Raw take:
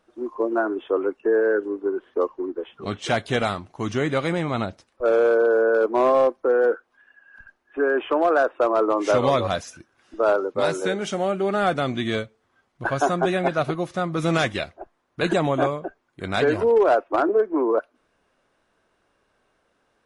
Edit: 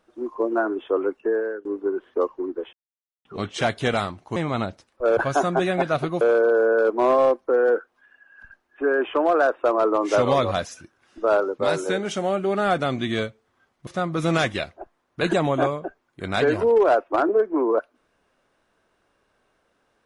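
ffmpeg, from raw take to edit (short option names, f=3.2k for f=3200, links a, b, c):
-filter_complex "[0:a]asplit=7[a][b][c][d][e][f][g];[a]atrim=end=1.65,asetpts=PTS-STARTPTS,afade=t=out:st=1.17:d=0.48:silence=0.0944061[h];[b]atrim=start=1.65:end=2.73,asetpts=PTS-STARTPTS,afade=t=in:d=0.004:c=hsin:silence=0.0944061,afade=t=out:st=1.076:d=0.004:c=hsin,apad=pad_dur=0.52[i];[c]atrim=start=2.73:end=3.842,asetpts=PTS-STARTPTS,afade=t=in:d=0.004:c=hsin[j];[d]atrim=start=4.358:end=5.172[k];[e]atrim=start=12.828:end=13.872[l];[f]atrim=start=5.168:end=12.832[m];[g]atrim=start=13.868[n];[h][i][j]concat=n=3:v=0:a=1[o];[o][k]acrossfade=d=0.004:c1=hsin:c2=hsin[p];[p][l]acrossfade=d=0.004:c1=hsin:c2=hsin[q];[q][m]acrossfade=d=0.004:c1=hsin:c2=hsin[r];[r][n]acrossfade=d=0.004:c1=hsin:c2=hsin"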